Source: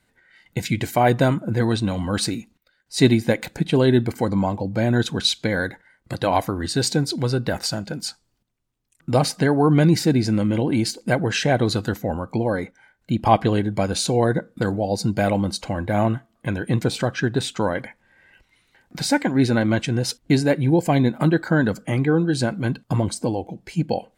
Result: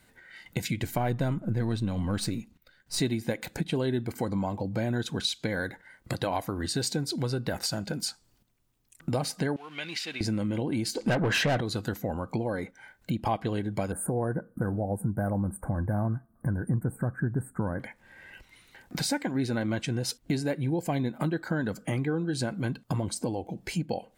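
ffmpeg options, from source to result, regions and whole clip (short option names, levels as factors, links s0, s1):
-filter_complex "[0:a]asettb=1/sr,asplit=3[s0][s1][s2];[s0]atrim=end=0.834[s3];[s1]atrim=start=0.83:end=3,asetpts=PTS-STARTPTS,afade=t=in:d=0.004:c=qsin,afade=t=out:st=2.166:d=0.004:c=qsin,aeval=exprs='if(lt(val(0),0),0.708*val(0),val(0))':c=same,bass=f=250:g=7,treble=f=4000:g=-2[s4];[s2]atrim=start=2.996[s5];[s3][s4]acrossfade=d=0.004:c1=hsin:c2=qsin[s6];[s6][s5]acrossfade=d=0.004:c1=qsin:c2=hsin,asettb=1/sr,asplit=3[s7][s8][s9];[s7]atrim=end=9.564[s10];[s8]atrim=start=9.56:end=10.21,asetpts=PTS-STARTPTS,afade=t=in:d=0.004:c=qsin,afade=t=out:st=0.646:d=0.004:c=qsin,aeval=exprs='val(0)+0.5*0.0211*sgn(val(0))':c=same,bandpass=f=2800:t=q:w=2.6[s11];[s9]atrim=start=10.206[s12];[s10][s11]acrossfade=d=0.004:c1=hsin:c2=qsin[s13];[s13][s12]acrossfade=d=0.004:c1=qsin:c2=hsin,asettb=1/sr,asplit=3[s14][s15][s16];[s14]atrim=end=10.954[s17];[s15]atrim=start=10.95:end=11.61,asetpts=PTS-STARTPTS,afade=t=in:d=0.004:c=qsin,afade=t=out:st=0.656:d=0.004:c=qsin,aemphasis=mode=reproduction:type=bsi,asplit=2[s18][s19];[s19]highpass=f=720:p=1,volume=15.8,asoftclip=type=tanh:threshold=0.708[s20];[s18][s20]amix=inputs=2:normalize=0,lowpass=f=6200:p=1,volume=0.501[s21];[s16]atrim=start=11.606[s22];[s17][s21]acrossfade=d=0.004:c1=hsin:c2=qsin[s23];[s23][s22]acrossfade=d=0.004:c1=qsin:c2=hsin,asettb=1/sr,asplit=3[s24][s25][s26];[s24]atrim=end=13.924[s27];[s25]atrim=start=13.92:end=17.8,asetpts=PTS-STARTPTS,afade=t=in:d=0.004:c=qsin,afade=t=out:st=3.876:d=0.004:c=qsin,asubboost=boost=3.5:cutoff=240,asuperstop=centerf=4000:order=12:qfactor=0.56[s28];[s26]atrim=start=17.796[s29];[s27][s28]acrossfade=d=0.004:c1=hsin:c2=qsin[s30];[s30][s29]acrossfade=d=0.004:c1=qsin:c2=hsin,highshelf=f=12000:g=8,acompressor=threshold=0.0158:ratio=3,volume=1.68"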